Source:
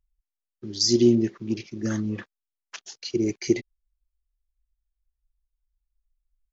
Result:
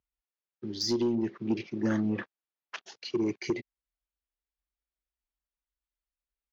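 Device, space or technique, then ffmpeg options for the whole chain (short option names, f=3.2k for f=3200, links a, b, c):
AM radio: -filter_complex "[0:a]highpass=120,lowpass=3.4k,acompressor=threshold=-22dB:ratio=6,asoftclip=type=tanh:threshold=-20.5dB,asettb=1/sr,asplit=3[a][b][c];[a]atrim=end=1.454[d];[b]atrim=start=1.45:end=2.96,asetpts=PTS-STARTPTS,afade=t=in:d=0.004:c=qsin,afade=t=out:st=1.506:d=0.004:c=qsin,equalizer=f=710:w=0.44:g=4[e];[c]atrim=start=2.956[f];[d][e]acrossfade=d=0.004:c1=hsin:c2=qsin[g];[g][f]acrossfade=d=0.004:c1=qsin:c2=hsin"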